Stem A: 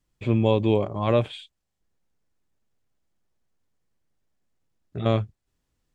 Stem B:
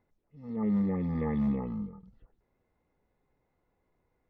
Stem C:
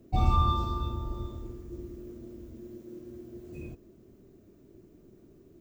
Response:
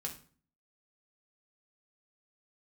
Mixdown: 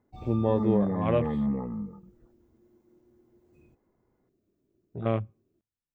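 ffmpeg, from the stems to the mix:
-filter_complex "[0:a]afwtdn=0.0158,volume=-4.5dB,asplit=2[a][b];[b]volume=-23.5dB[c];[1:a]lowpass=f=1.8k:w=0.5412,lowpass=f=1.8k:w=1.3066,volume=1.5dB[d];[2:a]volume=-17.5dB[e];[3:a]atrim=start_sample=2205[f];[c][f]afir=irnorm=-1:irlink=0[g];[a][d][e][g]amix=inputs=4:normalize=0,lowshelf=f=65:g=-6.5"

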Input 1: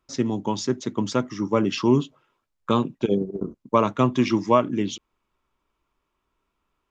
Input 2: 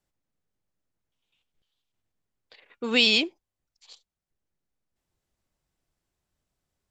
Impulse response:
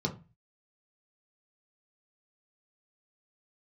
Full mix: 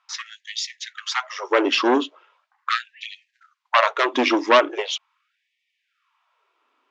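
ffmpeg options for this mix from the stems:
-filter_complex "[0:a]aeval=exprs='0.531*(cos(1*acos(clip(val(0)/0.531,-1,1)))-cos(1*PI/2))+0.0376*(cos(3*acos(clip(val(0)/0.531,-1,1)))-cos(3*PI/2))+0.119*(cos(4*acos(clip(val(0)/0.531,-1,1)))-cos(4*PI/2))+0.211*(cos(5*acos(clip(val(0)/0.531,-1,1)))-cos(5*PI/2))+0.00422*(cos(7*acos(clip(val(0)/0.531,-1,1)))-cos(7*PI/2))':c=same,highpass=f=610:p=1,volume=3dB,asplit=2[a][b];[1:a]lowpass=f=1.3k:w=0.5412,lowpass=f=1.3k:w=1.3066,volume=1dB,asplit=2[c][d];[d]volume=-6.5dB[e];[b]apad=whole_len=304345[f];[c][f]sidechaincompress=threshold=-23dB:ratio=16:attack=16:release=114[g];[2:a]atrim=start_sample=2205[h];[e][h]afir=irnorm=-1:irlink=0[i];[a][g][i]amix=inputs=3:normalize=0,lowpass=4.1k,afftfilt=real='re*gte(b*sr/1024,220*pow(1800/220,0.5+0.5*sin(2*PI*0.4*pts/sr)))':imag='im*gte(b*sr/1024,220*pow(1800/220,0.5+0.5*sin(2*PI*0.4*pts/sr)))':win_size=1024:overlap=0.75"

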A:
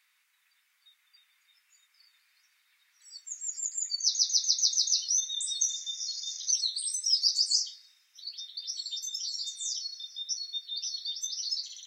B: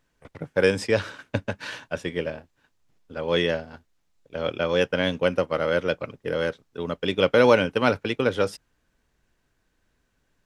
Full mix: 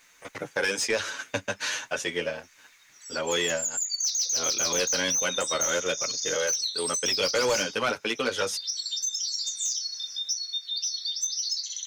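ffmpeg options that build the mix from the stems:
-filter_complex "[0:a]equalizer=f=3.1k:w=0.44:g=-5,volume=2.5dB[a];[1:a]aemphasis=mode=production:type=75kf,asplit=2[b][c];[c]adelay=8.6,afreqshift=0.83[d];[b][d]amix=inputs=2:normalize=1,volume=-1dB[e];[a][e]amix=inputs=2:normalize=0,equalizer=f=6.4k:t=o:w=0.29:g=11.5,asplit=2[f][g];[g]highpass=f=720:p=1,volume=19dB,asoftclip=type=tanh:threshold=-4.5dB[h];[f][h]amix=inputs=2:normalize=0,lowpass=f=3.4k:p=1,volume=-6dB,acompressor=threshold=-31dB:ratio=2"

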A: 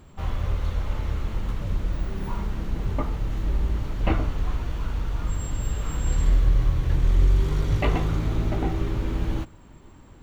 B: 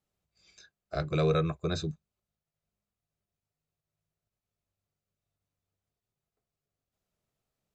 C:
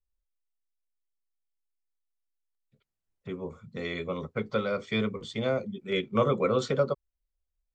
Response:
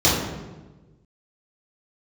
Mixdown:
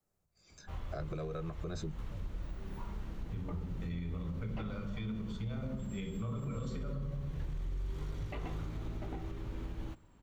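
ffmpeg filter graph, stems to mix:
-filter_complex "[0:a]adelay=500,volume=-13dB[a];[1:a]equalizer=f=3.2k:t=o:w=1.1:g=-11,acompressor=threshold=-31dB:ratio=6,volume=2.5dB[b];[2:a]asubboost=boost=10.5:cutoff=140,adelay=50,volume=-10.5dB,asplit=2[c][d];[d]volume=-22dB[e];[3:a]atrim=start_sample=2205[f];[e][f]afir=irnorm=-1:irlink=0[g];[a][b][c][g]amix=inputs=4:normalize=0,adynamicequalizer=threshold=0.0112:dfrequency=110:dqfactor=1.7:tfrequency=110:tqfactor=1.7:attack=5:release=100:ratio=0.375:range=3:mode=cutabove:tftype=bell,alimiter=level_in=7dB:limit=-24dB:level=0:latency=1:release=144,volume=-7dB"

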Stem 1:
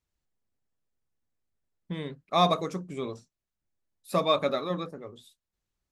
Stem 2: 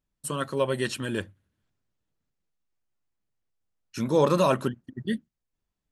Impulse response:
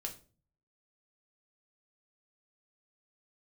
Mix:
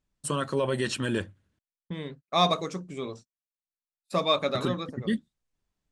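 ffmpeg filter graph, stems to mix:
-filter_complex "[0:a]agate=range=-28dB:threshold=-45dB:ratio=16:detection=peak,adynamicequalizer=threshold=0.00891:dfrequency=2000:dqfactor=0.7:tfrequency=2000:tqfactor=0.7:attack=5:release=100:ratio=0.375:range=2.5:mode=boostabove:tftype=highshelf,volume=-1dB[a];[1:a]alimiter=limit=-20dB:level=0:latency=1:release=20,volume=2.5dB,asplit=3[b][c][d];[b]atrim=end=1.59,asetpts=PTS-STARTPTS,afade=t=out:st=1.586:d=0.004:c=hsin[e];[c]atrim=start=1.59:end=4.55,asetpts=PTS-STARTPTS,volume=0[f];[d]atrim=start=4.55,asetpts=PTS-STARTPTS,afade=t=in:d=0.004:c=hsin[g];[e][f][g]concat=n=3:v=0:a=1[h];[a][h]amix=inputs=2:normalize=0,lowpass=f=9.3k:w=0.5412,lowpass=f=9.3k:w=1.3066"

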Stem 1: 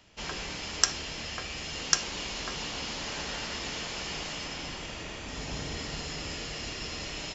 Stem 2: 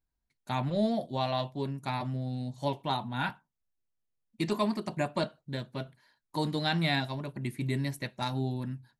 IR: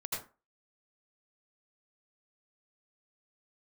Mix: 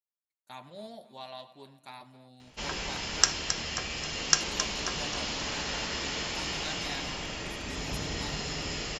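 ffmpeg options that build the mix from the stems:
-filter_complex "[0:a]adelay=2400,volume=1.5dB,asplit=2[a][b];[b]volume=-9dB[c];[1:a]highpass=f=610:p=1,highshelf=f=6.4k:g=9.5,agate=range=-9dB:threshold=-50dB:ratio=16:detection=peak,volume=-11.5dB,asplit=3[d][e][f];[e]volume=-17.5dB[g];[f]volume=-17.5dB[h];[2:a]atrim=start_sample=2205[i];[g][i]afir=irnorm=-1:irlink=0[j];[c][h]amix=inputs=2:normalize=0,aecho=0:1:267|534|801|1068|1335|1602:1|0.46|0.212|0.0973|0.0448|0.0206[k];[a][d][j][k]amix=inputs=4:normalize=0"

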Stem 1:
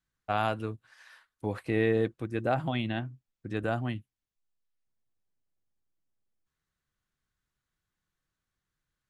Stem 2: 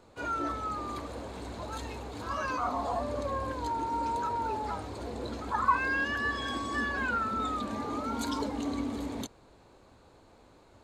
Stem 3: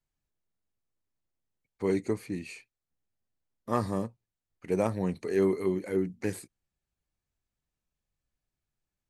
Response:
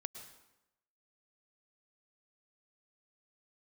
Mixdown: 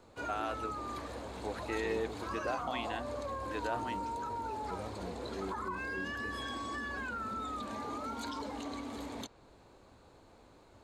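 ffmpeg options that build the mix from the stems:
-filter_complex "[0:a]highpass=410,alimiter=limit=-23.5dB:level=0:latency=1,volume=-3dB[a];[1:a]alimiter=level_in=1dB:limit=-24dB:level=0:latency=1:release=45,volume=-1dB,acrossover=split=510|6100[b][c][d];[b]acompressor=threshold=-42dB:ratio=4[e];[c]acompressor=threshold=-37dB:ratio=4[f];[d]acompressor=threshold=-57dB:ratio=4[g];[e][f][g]amix=inputs=3:normalize=0,volume=-1.5dB[h];[2:a]volume=-17dB[i];[a][h][i]amix=inputs=3:normalize=0"

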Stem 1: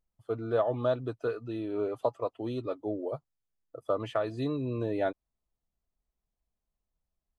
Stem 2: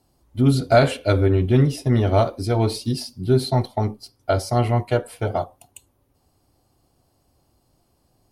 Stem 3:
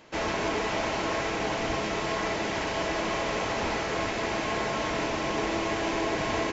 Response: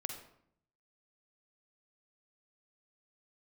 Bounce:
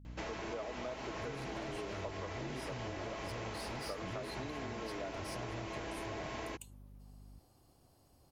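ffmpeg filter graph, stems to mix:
-filter_complex "[0:a]highpass=f=170:w=0.5412,highpass=f=170:w=1.3066,aeval=exprs='val(0)+0.00355*(sin(2*PI*50*n/s)+sin(2*PI*2*50*n/s)/2+sin(2*PI*3*50*n/s)/3+sin(2*PI*4*50*n/s)/4+sin(2*PI*5*50*n/s)/5)':c=same,volume=-4.5dB[a];[1:a]acompressor=threshold=-26dB:ratio=6,asoftclip=type=tanh:threshold=-32.5dB,adelay=850,volume=-2.5dB[b];[2:a]aeval=exprs='val(0)+0.0112*(sin(2*PI*60*n/s)+sin(2*PI*2*60*n/s)/2+sin(2*PI*3*60*n/s)/3+sin(2*PI*4*60*n/s)/4+sin(2*PI*5*60*n/s)/5)':c=same,adelay=50,volume=-7dB[c];[a][b][c]amix=inputs=3:normalize=0,acompressor=threshold=-39dB:ratio=6"

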